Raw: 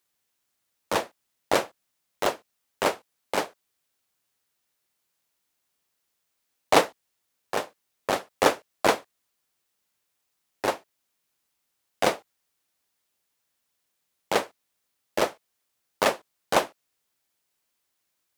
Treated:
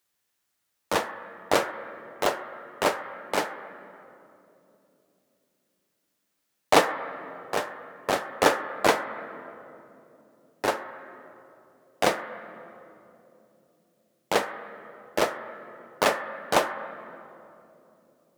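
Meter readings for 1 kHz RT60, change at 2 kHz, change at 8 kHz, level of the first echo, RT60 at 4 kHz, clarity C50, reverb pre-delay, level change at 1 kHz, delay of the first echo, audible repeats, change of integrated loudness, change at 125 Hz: 2.4 s, +2.0 dB, 0.0 dB, none, 1.8 s, 7.5 dB, 7 ms, +1.0 dB, none, none, -0.5 dB, +0.5 dB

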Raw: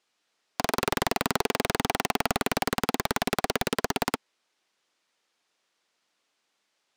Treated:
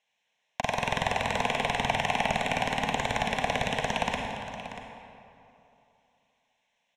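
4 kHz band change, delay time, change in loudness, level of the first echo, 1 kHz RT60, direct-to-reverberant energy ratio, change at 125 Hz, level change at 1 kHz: -1.0 dB, 0.637 s, -1.0 dB, -13.0 dB, 2.8 s, 1.0 dB, +1.0 dB, +1.5 dB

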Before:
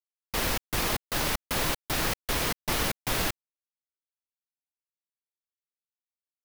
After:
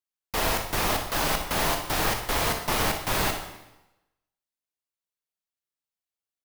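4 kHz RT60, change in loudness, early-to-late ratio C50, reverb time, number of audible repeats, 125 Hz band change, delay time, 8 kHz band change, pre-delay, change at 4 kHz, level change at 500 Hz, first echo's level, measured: 0.90 s, +2.5 dB, 6.0 dB, 0.95 s, 1, +2.0 dB, 61 ms, +1.5 dB, 6 ms, +2.0 dB, +4.5 dB, -10.0 dB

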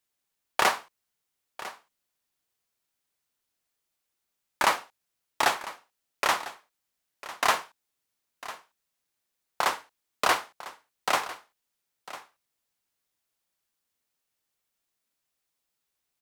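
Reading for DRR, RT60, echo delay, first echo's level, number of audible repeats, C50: none, none, 1 s, -16.0 dB, 1, none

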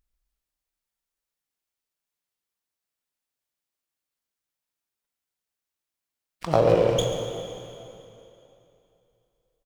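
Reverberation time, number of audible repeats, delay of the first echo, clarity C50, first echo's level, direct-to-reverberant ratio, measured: 2.9 s, 1, 0.139 s, 4.0 dB, -13.5 dB, 3.0 dB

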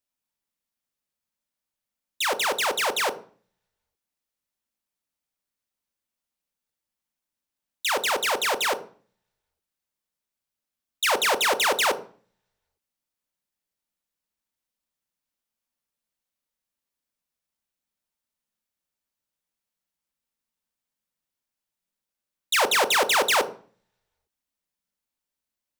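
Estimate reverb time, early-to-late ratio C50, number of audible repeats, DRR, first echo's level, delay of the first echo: 0.40 s, 16.0 dB, none, 9.0 dB, none, none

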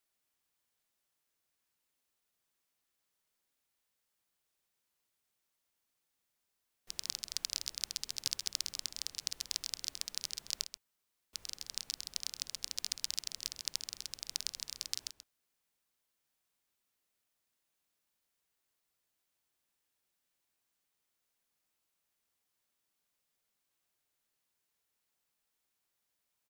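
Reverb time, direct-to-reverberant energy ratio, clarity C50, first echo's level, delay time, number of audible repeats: none, none, none, -11.0 dB, 0.132 s, 1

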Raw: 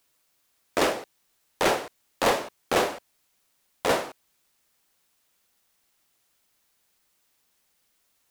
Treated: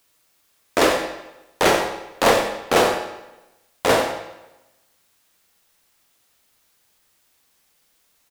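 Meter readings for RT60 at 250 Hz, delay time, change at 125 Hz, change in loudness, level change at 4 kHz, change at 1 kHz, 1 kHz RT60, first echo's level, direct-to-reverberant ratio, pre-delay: 0.95 s, 92 ms, +7.5 dB, +6.5 dB, +7.0 dB, +7.0 dB, 0.95 s, -11.0 dB, 4.0 dB, 19 ms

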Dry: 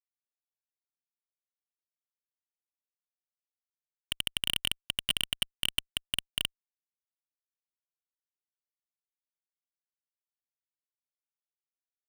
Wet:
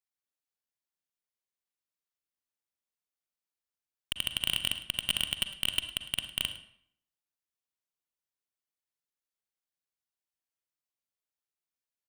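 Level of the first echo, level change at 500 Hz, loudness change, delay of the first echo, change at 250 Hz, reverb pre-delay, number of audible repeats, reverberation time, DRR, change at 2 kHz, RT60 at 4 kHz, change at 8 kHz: -17.0 dB, +0.5 dB, +0.5 dB, 0.106 s, +0.5 dB, 37 ms, 1, 0.65 s, 8.0 dB, +0.5 dB, 0.55 s, +0.5 dB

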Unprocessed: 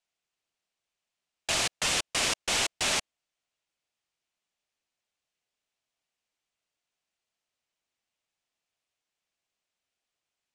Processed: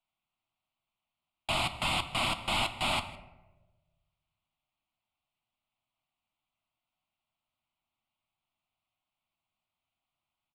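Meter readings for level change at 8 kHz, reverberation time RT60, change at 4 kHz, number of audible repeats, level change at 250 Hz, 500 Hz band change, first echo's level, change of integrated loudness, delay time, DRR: -14.0 dB, 1.1 s, -3.0 dB, 1, +1.5 dB, -1.5 dB, -20.0 dB, -3.5 dB, 0.158 s, 8.0 dB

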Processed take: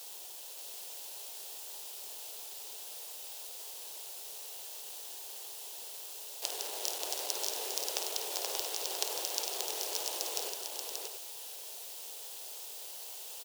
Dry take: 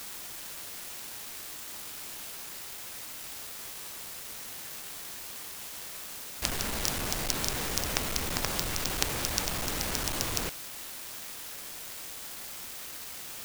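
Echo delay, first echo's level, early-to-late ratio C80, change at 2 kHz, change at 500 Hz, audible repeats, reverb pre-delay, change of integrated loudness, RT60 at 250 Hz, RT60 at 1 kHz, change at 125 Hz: 52 ms, -9.5 dB, none, -11.0 dB, -3.0 dB, 3, none, -3.5 dB, none, none, under -40 dB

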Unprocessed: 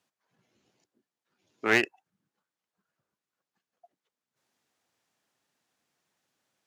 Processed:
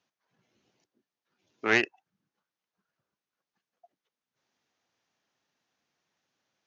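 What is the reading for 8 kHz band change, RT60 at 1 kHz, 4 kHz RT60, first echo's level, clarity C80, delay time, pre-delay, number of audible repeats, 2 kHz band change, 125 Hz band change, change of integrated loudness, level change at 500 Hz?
-2.0 dB, none, none, none, none, none, none, none, -0.5 dB, -1.0 dB, -0.5 dB, -1.0 dB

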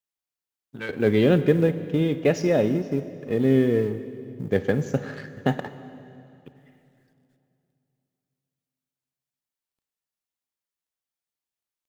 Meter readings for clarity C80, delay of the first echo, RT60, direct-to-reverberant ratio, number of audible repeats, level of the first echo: 13.0 dB, none, 2.8 s, 12.0 dB, none, none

